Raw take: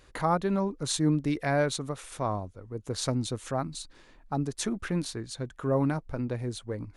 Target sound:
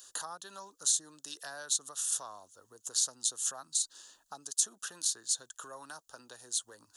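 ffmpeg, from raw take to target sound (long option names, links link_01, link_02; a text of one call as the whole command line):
ffmpeg -i in.wav -filter_complex "[0:a]asplit=2[link_01][link_02];[link_02]acompressor=threshold=-37dB:ratio=6,volume=-0.5dB[link_03];[link_01][link_03]amix=inputs=2:normalize=0,equalizer=frequency=6800:width=3.3:gain=8,acrossover=split=310|730[link_04][link_05][link_06];[link_04]acompressor=threshold=-41dB:ratio=4[link_07];[link_05]acompressor=threshold=-40dB:ratio=4[link_08];[link_06]acompressor=threshold=-32dB:ratio=4[link_09];[link_07][link_08][link_09]amix=inputs=3:normalize=0,asuperstop=centerf=2200:order=4:qfactor=1.9,aderivative,volume=6.5dB" out.wav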